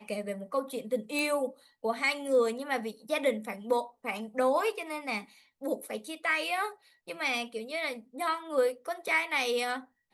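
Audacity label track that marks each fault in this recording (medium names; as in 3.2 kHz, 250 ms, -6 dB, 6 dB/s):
1.190000	1.190000	pop -19 dBFS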